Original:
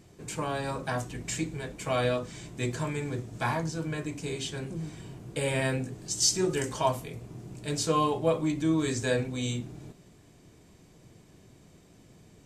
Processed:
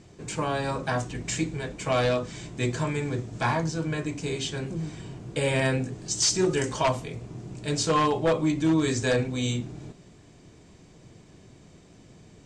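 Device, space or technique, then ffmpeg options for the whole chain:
synthesiser wavefolder: -af "aeval=exprs='0.106*(abs(mod(val(0)/0.106+3,4)-2)-1)':c=same,lowpass=f=8.1k:w=0.5412,lowpass=f=8.1k:w=1.3066,volume=4dB"

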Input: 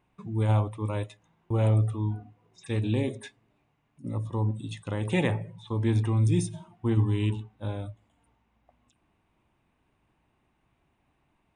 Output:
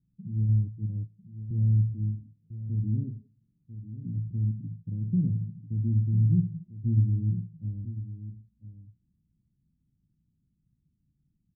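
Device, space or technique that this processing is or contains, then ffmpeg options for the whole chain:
the neighbour's flat through the wall: -af "lowpass=f=220:w=0.5412,lowpass=f=220:w=1.3066,equalizer=f=160:t=o:w=0.91:g=7,aecho=1:1:996:0.237,volume=-2.5dB"

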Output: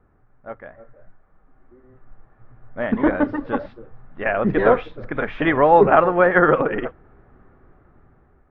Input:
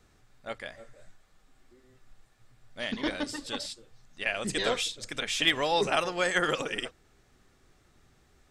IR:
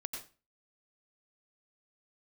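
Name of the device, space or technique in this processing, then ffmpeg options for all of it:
action camera in a waterproof case: -af "lowpass=f=1.5k:w=0.5412,lowpass=f=1.5k:w=1.3066,dynaudnorm=f=830:g=5:m=11dB,volume=4dB" -ar 16000 -c:a aac -b:a 48k

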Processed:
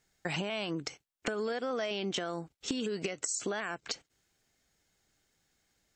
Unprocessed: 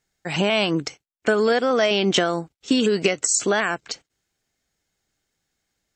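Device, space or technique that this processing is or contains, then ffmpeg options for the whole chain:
serial compression, peaks first: -af "acompressor=threshold=-28dB:ratio=5,acompressor=threshold=-37dB:ratio=2,volume=1.5dB"

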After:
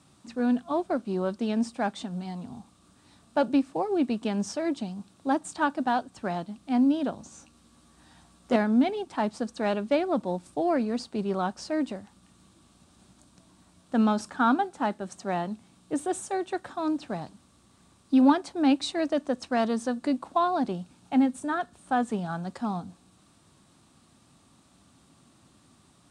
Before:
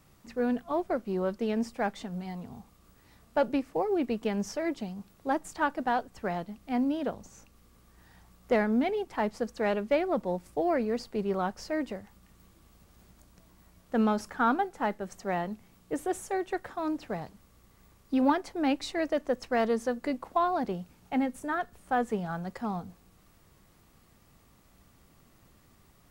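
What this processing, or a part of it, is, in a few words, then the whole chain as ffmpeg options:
car door speaker: -filter_complex "[0:a]asettb=1/sr,asplit=3[a][b][c];[a]atrim=end=7.174[d];[b]atrim=start=7.17:end=8.56,asetpts=PTS-STARTPTS,afade=t=in:d=0.004:c=qsin,afade=t=out:st=1.386:d=0.004:c=qsin,asplit=2[e][f];[f]adelay=13,volume=-4dB[g];[e][g]amix=inputs=2:normalize=0,atrim=end_sample=61299[h];[c]atrim=start=8.556[i];[d][h]acrossfade=d=0.004:c1=hsin:c2=qsin[j];[j][i]acrossfade=d=0.004:c1=qsin:c2=hsin,highpass=100,equalizer=f=270:t=q:w=4:g=5,equalizer=f=460:t=q:w=4:g=-7,equalizer=f=2k:t=q:w=4:g=-7,equalizer=f=3.8k:t=q:w=4:g=5,equalizer=f=8.7k:t=q:w=4:g=8,lowpass=f=9.4k:w=0.5412,lowpass=f=9.4k:w=1.3066,volume=2.5dB"

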